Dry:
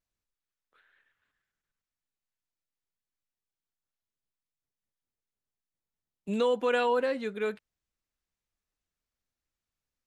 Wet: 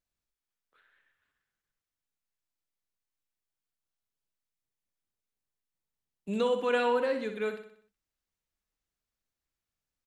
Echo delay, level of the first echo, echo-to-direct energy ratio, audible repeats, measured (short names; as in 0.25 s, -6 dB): 62 ms, -9.0 dB, -8.0 dB, 5